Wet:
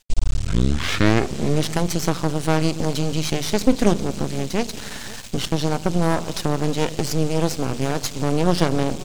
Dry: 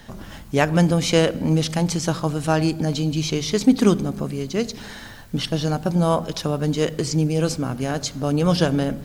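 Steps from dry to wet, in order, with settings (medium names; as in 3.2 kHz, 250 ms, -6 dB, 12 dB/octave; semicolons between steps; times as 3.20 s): tape start-up on the opening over 1.65 s; band noise 2.3–8.3 kHz -43 dBFS; in parallel at 0 dB: compression, threshold -28 dBFS, peak gain reduction 17.5 dB; on the sum: half-wave rectifier; gate with hold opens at -23 dBFS; on a send: delay 527 ms -20.5 dB; on the sum: trim +1 dB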